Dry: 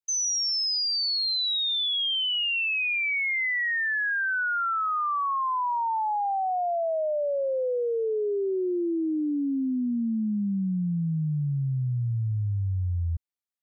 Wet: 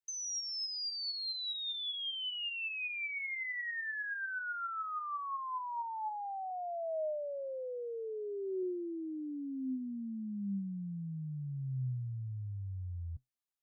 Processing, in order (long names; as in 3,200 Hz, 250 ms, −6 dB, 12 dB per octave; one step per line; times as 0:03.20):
0:06.50–0:08.63: spectral tilt +1.5 dB per octave
brickwall limiter −32.5 dBFS, peak gain reduction 9 dB
flanger 0.16 Hz, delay 6.6 ms, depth 5.5 ms, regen +70%
level +1 dB